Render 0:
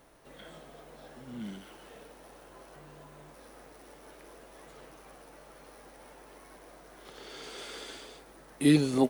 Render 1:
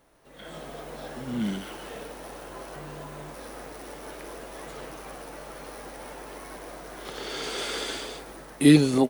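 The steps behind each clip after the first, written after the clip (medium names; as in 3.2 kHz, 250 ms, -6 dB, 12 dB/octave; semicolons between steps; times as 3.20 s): level rider gain up to 15 dB; trim -3.5 dB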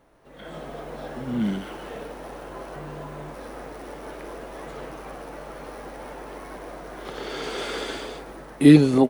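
treble shelf 3.1 kHz -10.5 dB; trim +4 dB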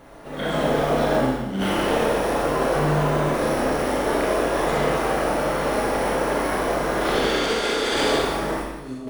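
compressor with a negative ratio -35 dBFS, ratio -1; Schroeder reverb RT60 1.1 s, combs from 27 ms, DRR -2 dB; trim +6 dB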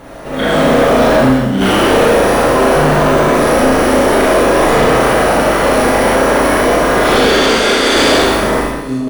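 early reflections 38 ms -4.5 dB, 69 ms -6.5 dB; sine folder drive 6 dB, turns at -6 dBFS; trim +1.5 dB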